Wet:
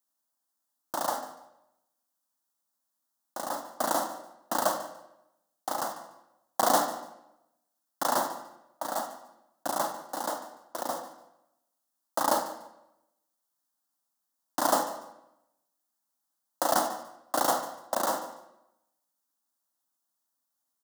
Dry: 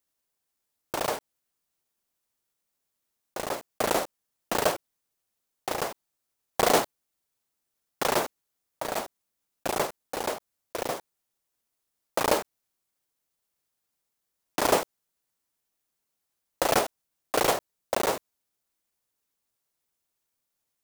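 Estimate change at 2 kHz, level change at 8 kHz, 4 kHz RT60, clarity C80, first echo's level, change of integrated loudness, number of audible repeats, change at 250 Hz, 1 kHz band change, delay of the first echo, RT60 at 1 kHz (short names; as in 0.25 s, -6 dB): -5.0 dB, -0.5 dB, 0.70 s, 10.5 dB, -16.5 dB, -2.0 dB, 2, -2.5 dB, +1.0 dB, 0.146 s, 0.85 s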